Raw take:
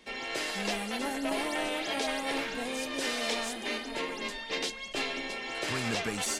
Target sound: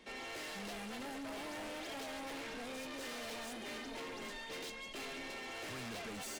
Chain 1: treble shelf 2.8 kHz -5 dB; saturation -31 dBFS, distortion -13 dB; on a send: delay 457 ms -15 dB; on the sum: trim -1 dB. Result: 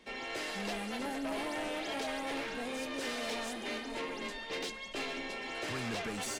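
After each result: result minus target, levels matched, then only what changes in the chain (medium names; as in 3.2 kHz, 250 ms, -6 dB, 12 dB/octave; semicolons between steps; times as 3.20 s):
echo 295 ms early; saturation: distortion -8 dB
change: delay 752 ms -15 dB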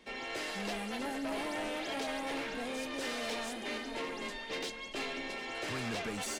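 saturation: distortion -8 dB
change: saturation -42 dBFS, distortion -5 dB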